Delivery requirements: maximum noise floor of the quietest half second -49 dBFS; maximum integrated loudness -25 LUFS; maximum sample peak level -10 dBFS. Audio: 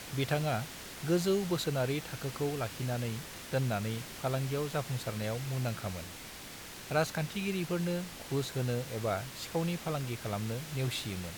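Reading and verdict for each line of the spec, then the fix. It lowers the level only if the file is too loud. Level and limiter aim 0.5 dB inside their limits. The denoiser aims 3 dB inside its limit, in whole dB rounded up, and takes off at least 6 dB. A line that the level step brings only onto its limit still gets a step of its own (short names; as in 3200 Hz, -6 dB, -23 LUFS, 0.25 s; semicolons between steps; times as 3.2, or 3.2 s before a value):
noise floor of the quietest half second -47 dBFS: fail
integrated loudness -34.5 LUFS: OK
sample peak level -16.5 dBFS: OK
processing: denoiser 6 dB, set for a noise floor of -47 dBFS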